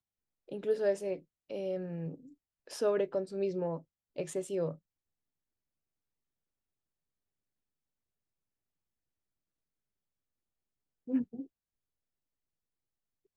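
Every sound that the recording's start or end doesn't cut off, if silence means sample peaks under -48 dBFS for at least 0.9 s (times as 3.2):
11.08–11.45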